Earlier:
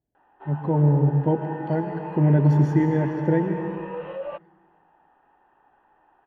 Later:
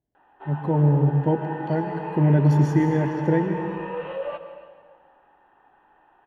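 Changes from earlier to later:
background: send on
master: add high-shelf EQ 4,000 Hz +10.5 dB

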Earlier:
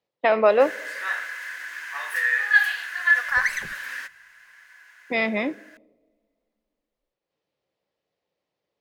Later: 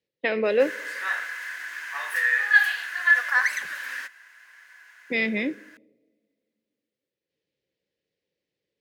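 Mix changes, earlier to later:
speech: add flat-topped bell 920 Hz −14 dB 1.3 octaves
second sound: add high-pass filter 880 Hz 6 dB per octave

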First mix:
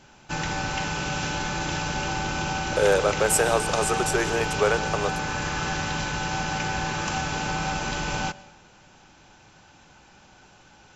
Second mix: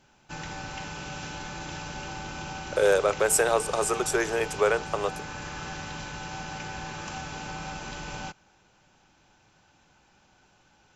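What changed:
background −8.5 dB
reverb: off

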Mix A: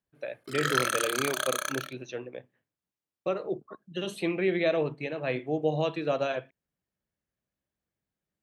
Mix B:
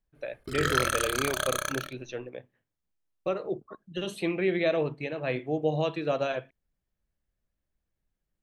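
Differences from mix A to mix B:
background: remove high-pass filter 530 Hz 6 dB per octave
master: remove high-pass filter 110 Hz 12 dB per octave

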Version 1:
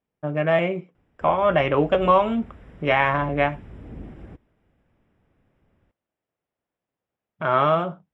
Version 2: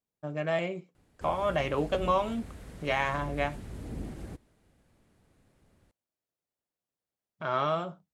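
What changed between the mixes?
speech −9.5 dB
master: remove Savitzky-Golay smoothing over 25 samples

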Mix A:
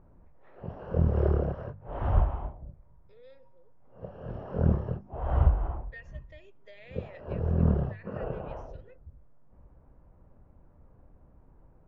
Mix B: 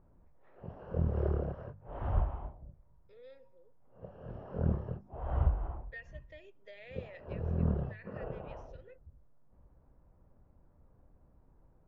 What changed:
background −6.5 dB
master: add high-shelf EQ 6,600 Hz −5.5 dB

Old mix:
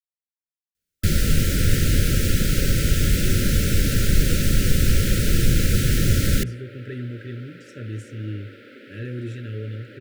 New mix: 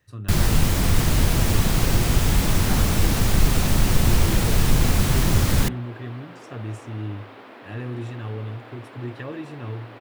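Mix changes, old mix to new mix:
speech: entry −1.25 s
first sound: entry −0.75 s
master: remove linear-phase brick-wall band-stop 600–1,300 Hz

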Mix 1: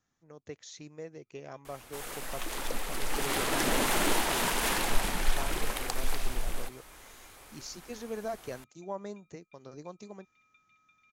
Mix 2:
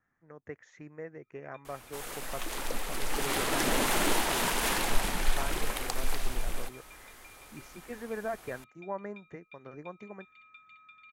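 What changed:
speech: add high shelf with overshoot 2,700 Hz −14 dB, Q 3
first sound +11.5 dB

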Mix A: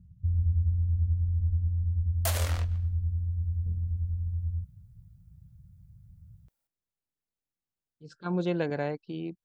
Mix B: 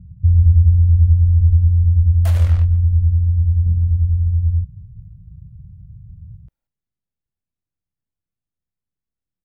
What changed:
speech: entry +1.80 s
first sound +5.0 dB
master: add bass and treble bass +10 dB, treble −9 dB

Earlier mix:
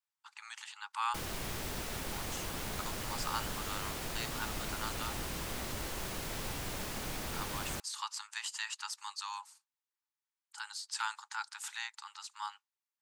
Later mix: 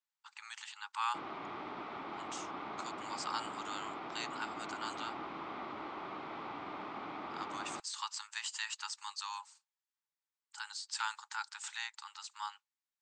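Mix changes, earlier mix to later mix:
background: add loudspeaker in its box 290–2,800 Hz, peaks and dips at 310 Hz +6 dB, 510 Hz −7 dB, 820 Hz +5 dB, 1,200 Hz +8 dB, 1,700 Hz −9 dB, 2,800 Hz −7 dB
master: add elliptic low-pass filter 8,000 Hz, stop band 50 dB

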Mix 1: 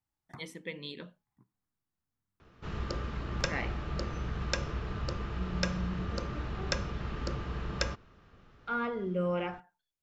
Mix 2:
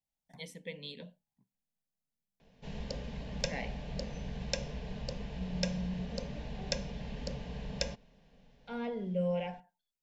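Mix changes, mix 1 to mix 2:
first sound −4.5 dB
master: add phaser with its sweep stopped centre 340 Hz, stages 6

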